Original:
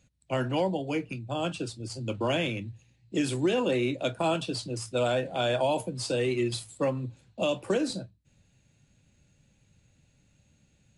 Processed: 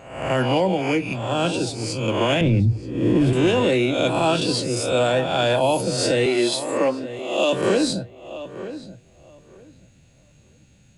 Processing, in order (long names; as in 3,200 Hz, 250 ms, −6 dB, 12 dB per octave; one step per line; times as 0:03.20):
peak hold with a rise ahead of every peak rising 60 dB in 0.72 s
0:02.41–0:03.33: spectral tilt −4.5 dB per octave
0:06.26–0:07.53: Butterworth high-pass 240 Hz
brickwall limiter −18 dBFS, peak gain reduction 9 dB
feedback echo with a low-pass in the loop 929 ms, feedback 18%, low-pass 2,100 Hz, level −13 dB
level +7.5 dB